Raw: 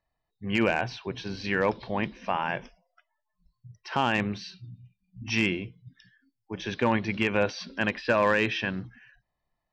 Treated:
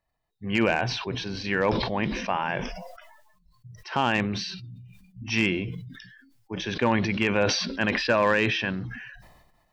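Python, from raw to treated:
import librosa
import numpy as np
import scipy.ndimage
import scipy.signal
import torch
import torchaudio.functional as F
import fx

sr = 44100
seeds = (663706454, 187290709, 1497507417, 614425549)

y = fx.sustainer(x, sr, db_per_s=42.0)
y = y * 10.0 ** (1.0 / 20.0)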